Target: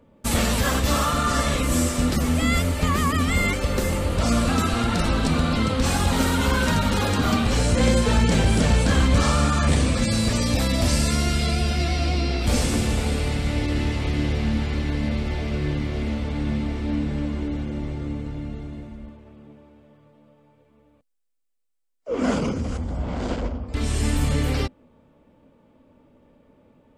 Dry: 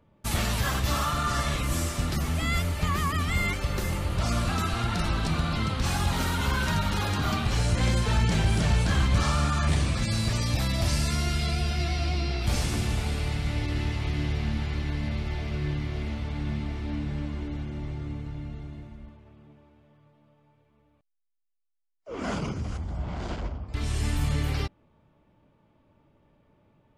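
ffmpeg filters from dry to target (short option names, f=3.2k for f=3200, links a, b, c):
-af "equalizer=f=125:t=o:w=0.33:g=-6,equalizer=f=250:t=o:w=0.33:g=10,equalizer=f=500:t=o:w=0.33:g=10,equalizer=f=8k:t=o:w=0.33:g=5,volume=4.5dB"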